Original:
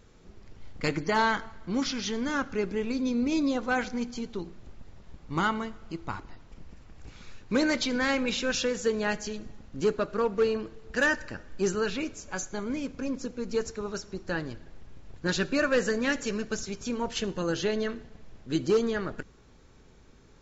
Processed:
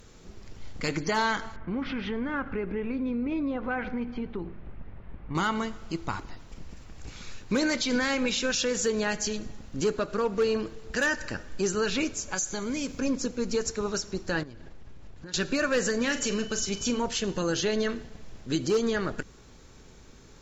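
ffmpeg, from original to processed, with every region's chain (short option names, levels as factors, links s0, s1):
-filter_complex "[0:a]asettb=1/sr,asplit=3[s0][s1][s2];[s0]atrim=end=1.564[s3];[s1]atrim=start=1.56:end=5.35,asetpts=PTS-STARTPTS,afade=t=in:d=0.004:c=qsin,afade=t=out:st=3.786:d=0.004:c=qsin,lowpass=f=2400:w=0.5412,lowpass=f=2400:w=1.3066,acompressor=threshold=0.0224:ratio=3:attack=3.2:release=140:knee=1:detection=peak,aeval=exprs='val(0)+0.00251*(sin(2*PI*50*n/s)+sin(2*PI*2*50*n/s)/2+sin(2*PI*3*50*n/s)/3+sin(2*PI*4*50*n/s)/4+sin(2*PI*5*50*n/s)/5)':c=same[s4];[s2]atrim=start=5.346[s5];[s3][s4]acrossfade=d=0.004:c1=hsin:c2=qsin[s6];[s6][s5]acrossfade=d=0.004:c1=qsin:c2=hsin,asettb=1/sr,asplit=3[s7][s8][s9];[s7]atrim=end=12.344[s10];[s8]atrim=start=12.34:end=12.99,asetpts=PTS-STARTPTS,afade=t=in:d=0.004:c=qsin,afade=t=out:st=0.646:d=0.004:c=qsin,highshelf=f=4000:g=8.5,acompressor=threshold=0.0224:ratio=2.5:attack=3.2:release=140:knee=1:detection=peak[s11];[s9]atrim=start=12.986[s12];[s10][s11]acrossfade=d=0.004:c1=hsin:c2=qsin[s13];[s13][s12]acrossfade=d=0.004:c1=qsin:c2=hsin,asettb=1/sr,asplit=3[s14][s15][s16];[s14]atrim=end=14.434[s17];[s15]atrim=start=14.43:end=15.34,asetpts=PTS-STARTPTS,afade=t=in:d=0.004:c=qsin,afade=t=out:st=0.906:d=0.004:c=qsin,highshelf=f=5000:g=-10.5,acompressor=threshold=0.00708:ratio=12:attack=3.2:release=140:knee=1:detection=peak[s18];[s16]atrim=start=15.336[s19];[s17][s18]acrossfade=d=0.004:c1=hsin:c2=qsin[s20];[s20][s19]acrossfade=d=0.004:c1=qsin:c2=hsin,asettb=1/sr,asplit=3[s21][s22][s23];[s21]atrim=end=16.014[s24];[s22]atrim=start=16.01:end=16.99,asetpts=PTS-STARTPTS,afade=t=in:d=0.004:c=qsin,afade=t=out:st=0.976:d=0.004:c=qsin,aeval=exprs='val(0)+0.00282*sin(2*PI*3000*n/s)':c=same,asplit=2[s25][s26];[s26]adelay=41,volume=0.266[s27];[s25][s27]amix=inputs=2:normalize=0,atrim=end_sample=43218[s28];[s23]atrim=start=16.986[s29];[s24][s28]acrossfade=d=0.004:c1=hsin:c2=qsin[s30];[s30][s29]acrossfade=d=0.004:c1=qsin:c2=hsin,aemphasis=mode=production:type=cd,alimiter=limit=0.075:level=0:latency=1:release=119,volume=1.68"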